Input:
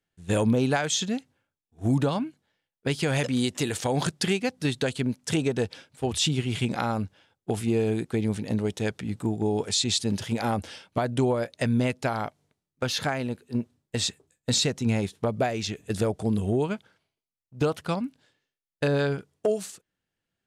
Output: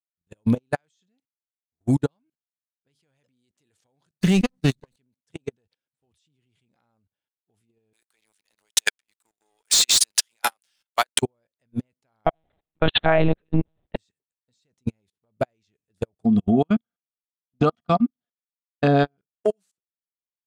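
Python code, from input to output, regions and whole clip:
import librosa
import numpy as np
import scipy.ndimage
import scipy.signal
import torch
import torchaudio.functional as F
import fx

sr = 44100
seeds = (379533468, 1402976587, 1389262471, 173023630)

y = fx.chain(x, sr, fx.lower_of_two(delay_ms=0.48),
    fx.peak_eq(hz=180.0, db=10.0, octaves=0.72),
    fx.sustainer(db_per_s=45.0), at=(4.21, 4.96))
y = fx.chain(y, sr, fx.highpass(hz=1200.0, slope=12),
    fx.high_shelf(hz=4700.0, db=11.0),
    fx.leveller(passes=3), at=(7.93, 11.22))
y = fx.chain(y, sr, fx.peak_eq(hz=700.0, db=14.5, octaves=0.23),
    fx.lpc_monotone(seeds[0], pitch_hz=160.0, order=10),
    fx.env_flatten(amount_pct=70), at=(12.26, 13.96))
y = fx.chain(y, sr, fx.air_absorb(metres=110.0),
    fx.small_body(hz=(230.0, 700.0, 1200.0, 3300.0), ring_ms=100, db=17), at=(16.25, 19.17))
y = fx.level_steps(y, sr, step_db=22)
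y = fx.upward_expand(y, sr, threshold_db=-44.0, expansion=2.5)
y = F.gain(torch.from_numpy(y), 7.5).numpy()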